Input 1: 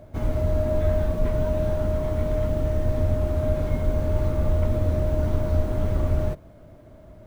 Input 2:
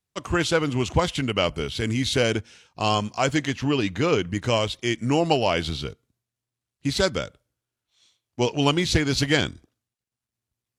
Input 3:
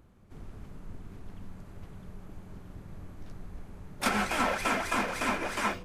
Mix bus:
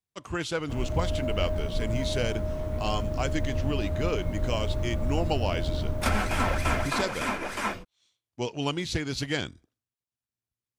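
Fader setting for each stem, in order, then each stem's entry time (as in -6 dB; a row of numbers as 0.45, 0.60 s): -6.5, -8.5, 0.0 dB; 0.55, 0.00, 2.00 s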